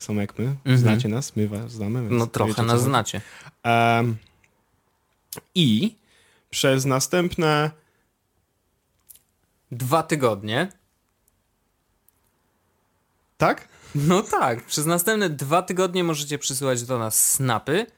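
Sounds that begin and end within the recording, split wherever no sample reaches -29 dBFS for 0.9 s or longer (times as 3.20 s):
5.33–7.69 s
9.11–10.66 s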